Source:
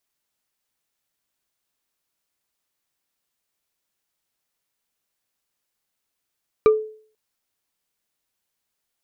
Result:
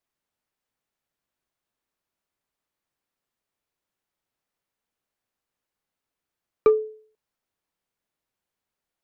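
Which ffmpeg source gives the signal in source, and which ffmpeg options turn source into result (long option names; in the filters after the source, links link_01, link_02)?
-f lavfi -i "aevalsrc='0.398*pow(10,-3*t/0.48)*sin(2*PI*433*t)+0.141*pow(10,-3*t/0.142)*sin(2*PI*1193.8*t)+0.0501*pow(10,-3*t/0.063)*sin(2*PI*2339.9*t)+0.0178*pow(10,-3*t/0.035)*sin(2*PI*3868*t)+0.00631*pow(10,-3*t/0.021)*sin(2*PI*5776.2*t)':duration=0.49:sample_rate=44100"
-filter_complex "[0:a]highshelf=frequency=2700:gain=-11,acrossover=split=320[link_01][link_02];[link_01]aeval=exprs='clip(val(0),-1,0.0422)':channel_layout=same[link_03];[link_03][link_02]amix=inputs=2:normalize=0"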